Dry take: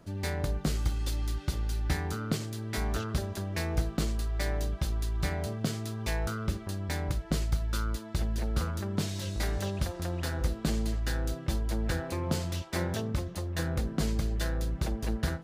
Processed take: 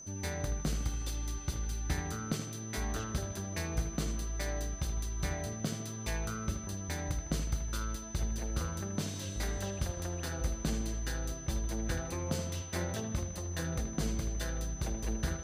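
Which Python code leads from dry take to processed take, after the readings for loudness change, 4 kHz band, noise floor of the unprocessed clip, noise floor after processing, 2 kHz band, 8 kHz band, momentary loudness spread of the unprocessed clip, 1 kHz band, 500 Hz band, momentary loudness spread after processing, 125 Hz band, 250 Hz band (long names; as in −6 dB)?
−4.0 dB, −4.0 dB, −43 dBFS, −42 dBFS, −4.0 dB, +3.5 dB, 3 LU, −4.0 dB, −4.5 dB, 3 LU, −5.0 dB, −4.0 dB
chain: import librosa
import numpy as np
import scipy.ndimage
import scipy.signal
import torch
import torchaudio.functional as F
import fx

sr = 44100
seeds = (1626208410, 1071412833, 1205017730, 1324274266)

y = fx.echo_bbd(x, sr, ms=78, stages=2048, feedback_pct=56, wet_db=-9.5)
y = y + 10.0 ** (-42.0 / 20.0) * np.sin(2.0 * np.pi * 6100.0 * np.arange(len(y)) / sr)
y = y * 10.0 ** (-4.5 / 20.0)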